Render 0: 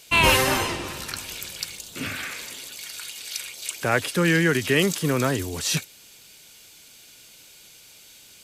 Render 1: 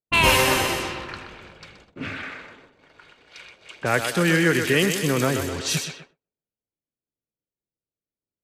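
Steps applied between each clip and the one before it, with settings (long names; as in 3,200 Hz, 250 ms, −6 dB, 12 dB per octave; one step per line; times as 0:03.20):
feedback echo with a high-pass in the loop 126 ms, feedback 61%, high-pass 230 Hz, level −7 dB
noise gate −36 dBFS, range −33 dB
low-pass that shuts in the quiet parts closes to 480 Hz, open at −20.5 dBFS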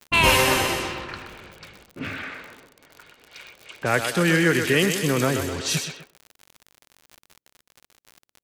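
surface crackle 70 per second −33 dBFS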